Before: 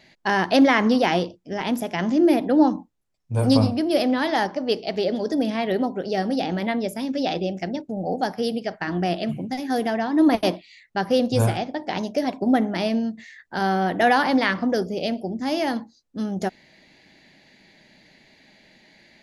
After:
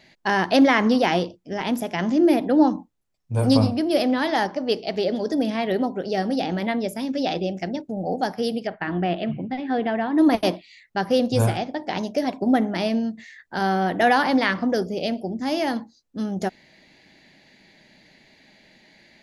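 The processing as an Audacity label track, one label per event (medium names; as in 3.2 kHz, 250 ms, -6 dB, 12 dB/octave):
8.670000	10.180000	inverse Chebyshev low-pass stop band from 8.1 kHz, stop band 50 dB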